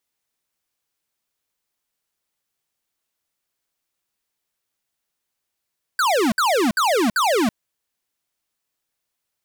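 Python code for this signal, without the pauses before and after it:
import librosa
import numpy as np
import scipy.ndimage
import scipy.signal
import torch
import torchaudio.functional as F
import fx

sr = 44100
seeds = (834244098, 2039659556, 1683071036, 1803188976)

y = fx.laser_zaps(sr, level_db=-18.0, start_hz=1600.0, end_hz=200.0, length_s=0.33, wave='square', shots=4, gap_s=0.06)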